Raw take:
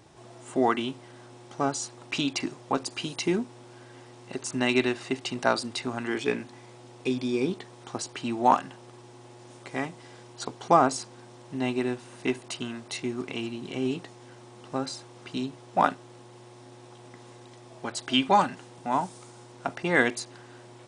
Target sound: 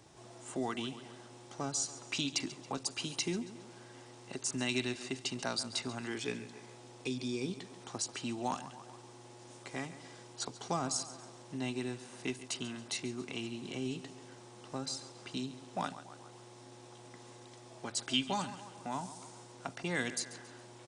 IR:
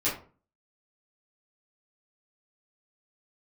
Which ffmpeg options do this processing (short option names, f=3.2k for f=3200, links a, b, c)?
-filter_complex "[0:a]equalizer=f=6.8k:w=0.74:g=5,aecho=1:1:138|276|414|552:0.158|0.065|0.0266|0.0109,acrossover=split=200|3000[a][b][c];[b]acompressor=threshold=-38dB:ratio=2[d];[a][d][c]amix=inputs=3:normalize=0,volume=-5dB"